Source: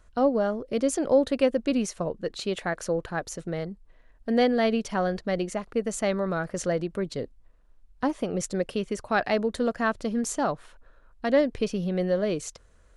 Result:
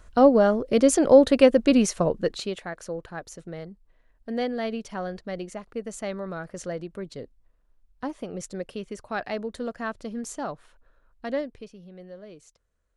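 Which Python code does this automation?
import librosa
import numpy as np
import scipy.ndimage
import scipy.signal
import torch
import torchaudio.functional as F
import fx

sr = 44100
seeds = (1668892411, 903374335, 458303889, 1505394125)

y = fx.gain(x, sr, db=fx.line((2.23, 6.5), (2.63, -6.0), (11.33, -6.0), (11.74, -18.0)))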